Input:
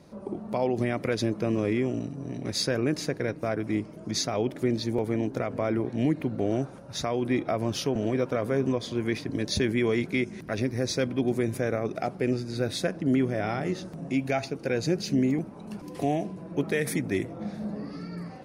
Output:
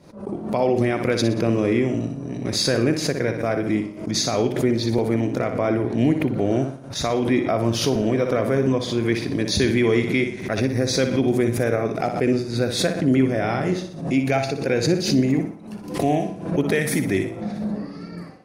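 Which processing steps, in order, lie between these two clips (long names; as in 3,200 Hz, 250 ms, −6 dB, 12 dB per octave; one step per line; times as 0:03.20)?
downward expander −33 dBFS
flutter between parallel walls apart 10.4 metres, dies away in 0.47 s
background raised ahead of every attack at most 91 dB per second
level +5.5 dB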